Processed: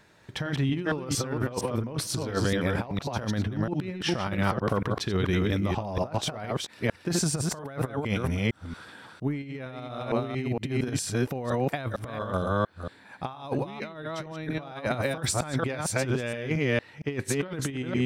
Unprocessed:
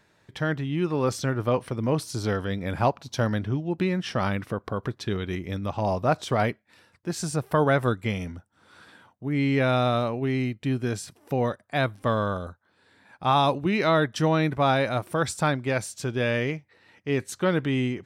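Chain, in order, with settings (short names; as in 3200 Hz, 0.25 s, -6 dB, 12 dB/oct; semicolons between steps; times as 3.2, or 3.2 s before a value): reverse delay 0.23 s, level -3.5 dB; negative-ratio compressor -28 dBFS, ratio -0.5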